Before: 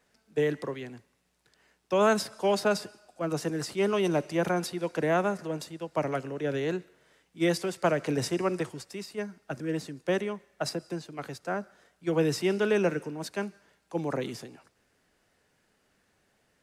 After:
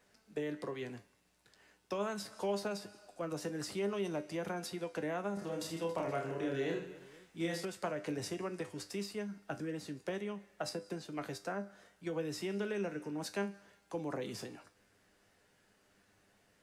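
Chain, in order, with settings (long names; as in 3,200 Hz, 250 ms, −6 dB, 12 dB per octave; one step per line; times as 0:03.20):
downward compressor 4 to 1, threshold −37 dBFS, peak gain reduction 15 dB
tuned comb filter 100 Hz, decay 0.25 s, harmonics all, mix 70%
0:05.34–0:07.65: reverse bouncing-ball delay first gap 30 ms, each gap 1.6×, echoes 5
level +6 dB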